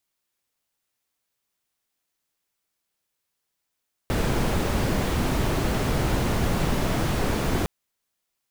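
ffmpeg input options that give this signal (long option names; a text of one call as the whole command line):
ffmpeg -f lavfi -i "anoisesrc=color=brown:amplitude=0.331:duration=3.56:sample_rate=44100:seed=1" out.wav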